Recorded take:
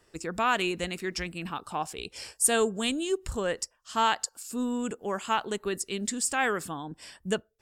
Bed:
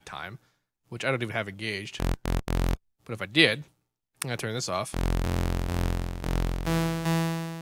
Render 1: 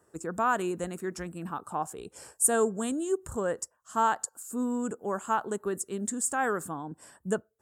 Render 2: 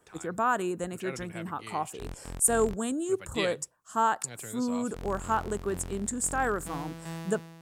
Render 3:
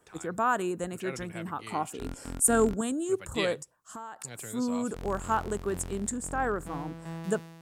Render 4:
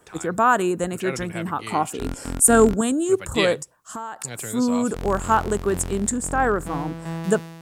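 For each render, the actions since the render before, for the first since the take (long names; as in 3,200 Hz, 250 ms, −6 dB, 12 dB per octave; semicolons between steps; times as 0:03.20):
high-pass filter 90 Hz 12 dB per octave; flat-topped bell 3,300 Hz −15.5 dB
mix in bed −13 dB
0:01.72–0:02.81: hollow resonant body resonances 260/1,400 Hz, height 10 dB; 0:03.59–0:04.25: downward compressor 8 to 1, threshold −38 dBFS; 0:06.17–0:07.24: high-shelf EQ 2,600 Hz −10 dB
level +9 dB; brickwall limiter −2 dBFS, peak gain reduction 2 dB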